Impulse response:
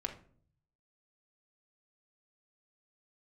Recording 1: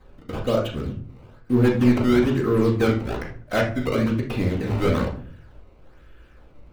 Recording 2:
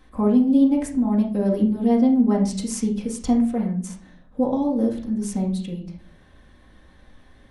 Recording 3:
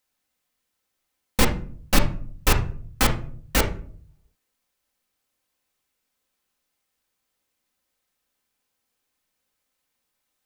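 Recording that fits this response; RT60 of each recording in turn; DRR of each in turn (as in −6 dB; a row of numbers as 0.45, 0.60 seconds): 3; 0.50, 0.50, 0.50 seconds; −12.5, −5.5, 1.0 decibels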